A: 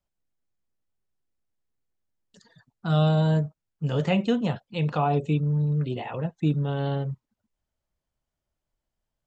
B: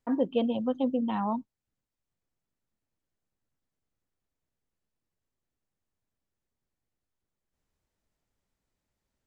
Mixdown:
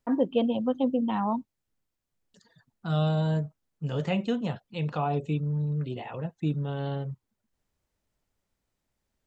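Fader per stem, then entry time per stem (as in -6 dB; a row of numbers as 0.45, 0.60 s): -4.5, +2.0 dB; 0.00, 0.00 s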